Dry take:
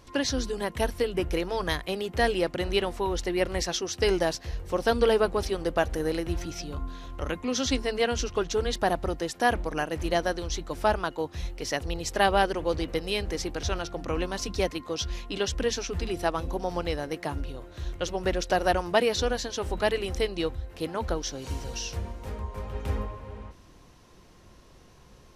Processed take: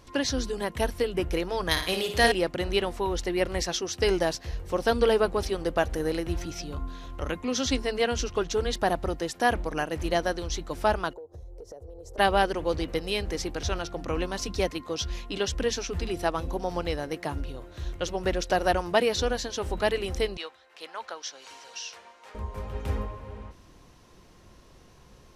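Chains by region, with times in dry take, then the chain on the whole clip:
0:01.71–0:02.32: high-shelf EQ 2,000 Hz +9 dB + flutter between parallel walls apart 9.5 metres, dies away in 0.52 s
0:11.13–0:12.18: drawn EQ curve 110 Hz 0 dB, 200 Hz −18 dB, 470 Hz +8 dB, 820 Hz −5 dB, 2,500 Hz −29 dB, 6,800 Hz −12 dB + downward compressor 16 to 1, threshold −39 dBFS
0:20.37–0:22.35: high-pass filter 950 Hz + high-frequency loss of the air 55 metres
whole clip: no processing

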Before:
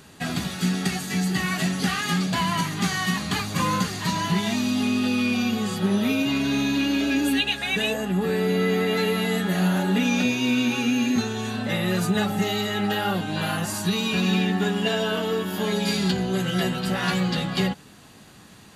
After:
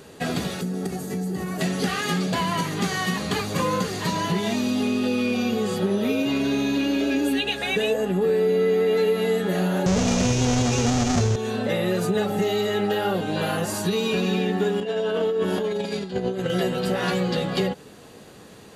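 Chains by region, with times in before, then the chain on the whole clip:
0:00.61–0:01.61: parametric band 2,900 Hz −13.5 dB 2.5 octaves + downward compressor 3 to 1, threshold −27 dBFS
0:09.86–0:11.36: each half-wave held at its own peak + low-pass with resonance 6,400 Hz, resonance Q 4.1 + low shelf with overshoot 170 Hz +12.5 dB, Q 1.5
0:14.80–0:16.50: linear-phase brick-wall low-pass 12,000 Hz + compressor whose output falls as the input rises −28 dBFS, ratio −0.5 + high-shelf EQ 6,700 Hz −7.5 dB
whole clip: parametric band 470 Hz +12.5 dB 0.84 octaves; downward compressor 2.5 to 1, threshold −21 dBFS

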